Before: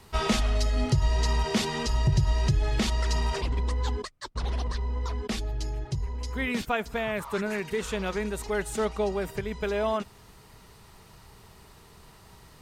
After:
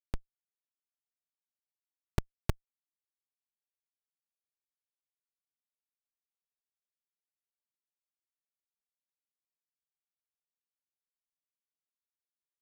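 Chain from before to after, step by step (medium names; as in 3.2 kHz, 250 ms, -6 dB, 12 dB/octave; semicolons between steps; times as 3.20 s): robot voice 86.4 Hz; bucket-brigade echo 304 ms, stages 1024, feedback 71%, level -4 dB; Schmitt trigger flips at -19 dBFS; trim +9.5 dB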